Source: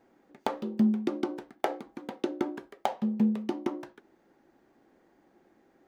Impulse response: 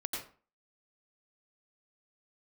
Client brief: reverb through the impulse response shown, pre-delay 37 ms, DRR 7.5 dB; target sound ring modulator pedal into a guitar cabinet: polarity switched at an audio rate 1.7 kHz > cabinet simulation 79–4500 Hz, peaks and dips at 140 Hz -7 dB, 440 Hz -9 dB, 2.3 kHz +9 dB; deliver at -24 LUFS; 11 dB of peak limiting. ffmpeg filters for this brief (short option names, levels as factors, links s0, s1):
-filter_complex "[0:a]alimiter=limit=0.0891:level=0:latency=1,asplit=2[s0][s1];[1:a]atrim=start_sample=2205,adelay=37[s2];[s1][s2]afir=irnorm=-1:irlink=0,volume=0.335[s3];[s0][s3]amix=inputs=2:normalize=0,aeval=exprs='val(0)*sgn(sin(2*PI*1700*n/s))':c=same,highpass=79,equalizer=f=140:t=q:w=4:g=-7,equalizer=f=440:t=q:w=4:g=-9,equalizer=f=2300:t=q:w=4:g=9,lowpass=f=4500:w=0.5412,lowpass=f=4500:w=1.3066,volume=1.5"